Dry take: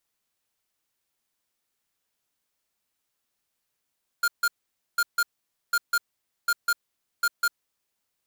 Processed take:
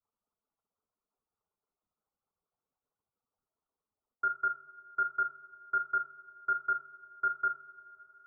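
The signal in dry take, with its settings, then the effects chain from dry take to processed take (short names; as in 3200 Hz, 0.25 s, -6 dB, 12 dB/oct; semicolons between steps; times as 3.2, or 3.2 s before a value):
beep pattern square 1410 Hz, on 0.05 s, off 0.15 s, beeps 2, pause 0.50 s, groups 5, -22 dBFS
median-filter separation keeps percussive; steep low-pass 1400 Hz 96 dB/oct; two-slope reverb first 0.37 s, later 4.4 s, from -21 dB, DRR 5 dB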